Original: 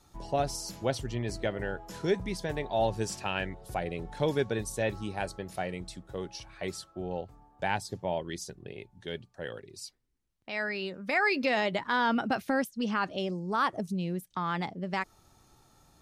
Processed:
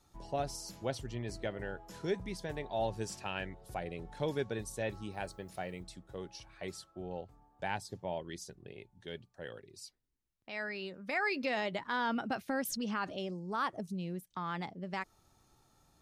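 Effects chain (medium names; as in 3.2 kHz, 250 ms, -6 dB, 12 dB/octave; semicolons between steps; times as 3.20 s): 5.11–5.82 s: added noise blue -74 dBFS; 12.65–13.17 s: swell ahead of each attack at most 23 dB/s; trim -6.5 dB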